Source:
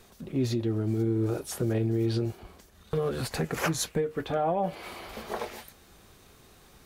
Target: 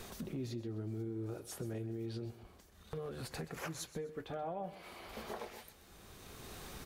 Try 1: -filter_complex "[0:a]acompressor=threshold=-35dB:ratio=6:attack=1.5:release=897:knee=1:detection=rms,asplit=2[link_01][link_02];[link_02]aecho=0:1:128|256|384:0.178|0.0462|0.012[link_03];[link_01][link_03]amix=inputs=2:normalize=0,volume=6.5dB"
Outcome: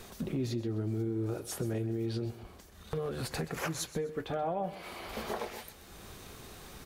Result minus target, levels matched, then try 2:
downward compressor: peak gain reduction −7.5 dB
-filter_complex "[0:a]acompressor=threshold=-44dB:ratio=6:attack=1.5:release=897:knee=1:detection=rms,asplit=2[link_01][link_02];[link_02]aecho=0:1:128|256|384:0.178|0.0462|0.012[link_03];[link_01][link_03]amix=inputs=2:normalize=0,volume=6.5dB"

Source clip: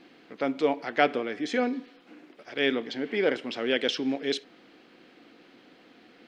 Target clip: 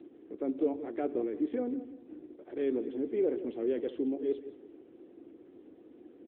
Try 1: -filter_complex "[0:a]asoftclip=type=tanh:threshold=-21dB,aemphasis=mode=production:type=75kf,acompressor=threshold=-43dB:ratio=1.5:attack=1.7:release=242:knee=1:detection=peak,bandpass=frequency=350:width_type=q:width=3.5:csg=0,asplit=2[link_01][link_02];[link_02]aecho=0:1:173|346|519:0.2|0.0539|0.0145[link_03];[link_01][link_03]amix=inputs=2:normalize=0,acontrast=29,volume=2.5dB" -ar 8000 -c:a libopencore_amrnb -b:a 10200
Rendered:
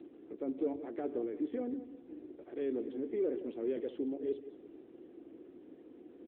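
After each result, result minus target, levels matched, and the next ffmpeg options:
soft clipping: distortion +9 dB; downward compressor: peak gain reduction +2.5 dB
-filter_complex "[0:a]asoftclip=type=tanh:threshold=-13dB,aemphasis=mode=production:type=75kf,acompressor=threshold=-43dB:ratio=1.5:attack=1.7:release=242:knee=1:detection=peak,bandpass=frequency=350:width_type=q:width=3.5:csg=0,asplit=2[link_01][link_02];[link_02]aecho=0:1:173|346|519:0.2|0.0539|0.0145[link_03];[link_01][link_03]amix=inputs=2:normalize=0,acontrast=29,volume=2.5dB" -ar 8000 -c:a libopencore_amrnb -b:a 10200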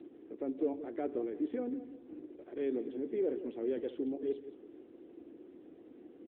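downward compressor: peak gain reduction +3.5 dB
-filter_complex "[0:a]asoftclip=type=tanh:threshold=-13dB,aemphasis=mode=production:type=75kf,acompressor=threshold=-33dB:ratio=1.5:attack=1.7:release=242:knee=1:detection=peak,bandpass=frequency=350:width_type=q:width=3.5:csg=0,asplit=2[link_01][link_02];[link_02]aecho=0:1:173|346|519:0.2|0.0539|0.0145[link_03];[link_01][link_03]amix=inputs=2:normalize=0,acontrast=29,volume=2.5dB" -ar 8000 -c:a libopencore_amrnb -b:a 10200

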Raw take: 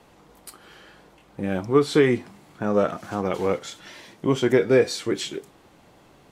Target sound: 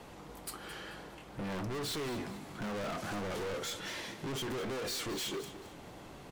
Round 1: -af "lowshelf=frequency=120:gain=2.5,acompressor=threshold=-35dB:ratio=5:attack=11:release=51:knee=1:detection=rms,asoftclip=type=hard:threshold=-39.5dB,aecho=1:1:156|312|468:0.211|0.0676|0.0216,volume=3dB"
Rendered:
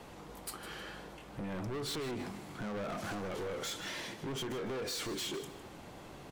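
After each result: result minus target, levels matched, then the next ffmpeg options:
downward compressor: peak gain reduction +9 dB; echo 62 ms early
-af "lowshelf=frequency=120:gain=2.5,acompressor=threshold=-24dB:ratio=5:attack=11:release=51:knee=1:detection=rms,asoftclip=type=hard:threshold=-39.5dB,aecho=1:1:156|312|468:0.211|0.0676|0.0216,volume=3dB"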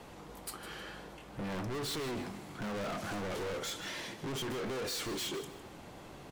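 echo 62 ms early
-af "lowshelf=frequency=120:gain=2.5,acompressor=threshold=-24dB:ratio=5:attack=11:release=51:knee=1:detection=rms,asoftclip=type=hard:threshold=-39.5dB,aecho=1:1:218|436|654:0.211|0.0676|0.0216,volume=3dB"

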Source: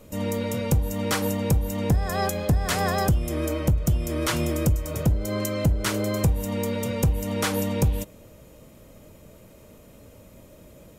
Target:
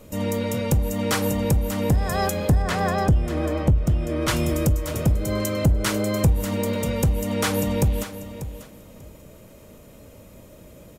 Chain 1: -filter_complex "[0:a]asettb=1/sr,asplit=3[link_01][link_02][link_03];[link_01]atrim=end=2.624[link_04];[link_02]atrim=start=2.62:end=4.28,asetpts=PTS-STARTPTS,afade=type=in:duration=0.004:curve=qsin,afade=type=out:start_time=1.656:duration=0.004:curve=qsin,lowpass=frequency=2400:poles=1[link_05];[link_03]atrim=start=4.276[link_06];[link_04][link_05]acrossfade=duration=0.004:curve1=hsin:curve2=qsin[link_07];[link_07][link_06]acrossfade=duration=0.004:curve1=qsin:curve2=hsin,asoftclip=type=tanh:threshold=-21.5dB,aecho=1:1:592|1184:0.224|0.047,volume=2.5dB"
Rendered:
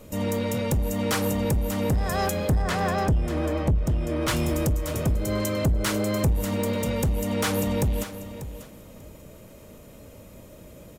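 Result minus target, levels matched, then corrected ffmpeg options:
soft clipping: distortion +11 dB
-filter_complex "[0:a]asettb=1/sr,asplit=3[link_01][link_02][link_03];[link_01]atrim=end=2.624[link_04];[link_02]atrim=start=2.62:end=4.28,asetpts=PTS-STARTPTS,afade=type=in:duration=0.004:curve=qsin,afade=type=out:start_time=1.656:duration=0.004:curve=qsin,lowpass=frequency=2400:poles=1[link_05];[link_03]atrim=start=4.276[link_06];[link_04][link_05]acrossfade=duration=0.004:curve1=hsin:curve2=qsin[link_07];[link_07][link_06]acrossfade=duration=0.004:curve1=qsin:curve2=hsin,asoftclip=type=tanh:threshold=-13dB,aecho=1:1:592|1184:0.224|0.047,volume=2.5dB"

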